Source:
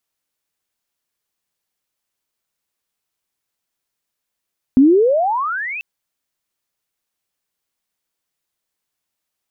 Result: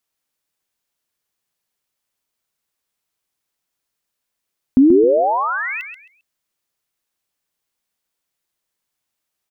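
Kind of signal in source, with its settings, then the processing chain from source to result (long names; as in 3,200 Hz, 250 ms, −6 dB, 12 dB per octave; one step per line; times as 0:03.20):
glide logarithmic 250 Hz → 2,700 Hz −5.5 dBFS → −24 dBFS 1.04 s
repeating echo 133 ms, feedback 24%, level −8 dB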